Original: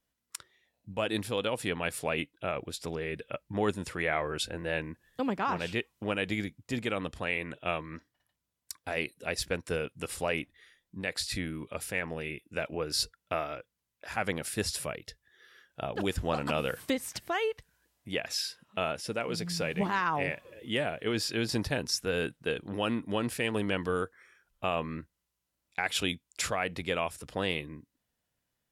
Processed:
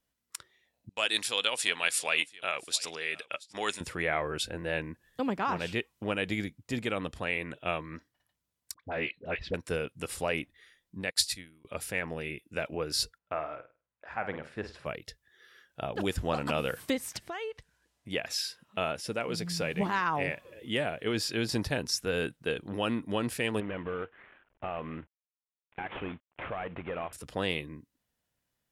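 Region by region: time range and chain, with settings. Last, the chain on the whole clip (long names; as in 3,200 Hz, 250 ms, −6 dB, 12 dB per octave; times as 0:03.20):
0:00.89–0:03.81: meter weighting curve ITU-R 468 + noise gate −51 dBFS, range −15 dB + single-tap delay 678 ms −22.5 dB
0:08.74–0:09.54: low-pass filter 3,400 Hz 24 dB per octave + all-pass dispersion highs, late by 57 ms, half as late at 1,100 Hz
0:11.10–0:11.65: de-essing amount 40% + high-shelf EQ 2,500 Hz +11.5 dB + expander for the loud parts 2.5 to 1, over −46 dBFS
0:13.18–0:14.86: low-pass filter 1,100 Hz + tilt shelving filter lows −7.5 dB, about 820 Hz + flutter between parallel walls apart 8.7 metres, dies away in 0.31 s
0:17.17–0:18.11: low-pass filter 9,100 Hz + downward compressor 2 to 1, threshold −39 dBFS
0:23.60–0:27.13: variable-slope delta modulation 16 kbit/s + parametric band 670 Hz +4.5 dB 2.8 octaves + downward compressor 2 to 1, threshold −37 dBFS
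whole clip: no processing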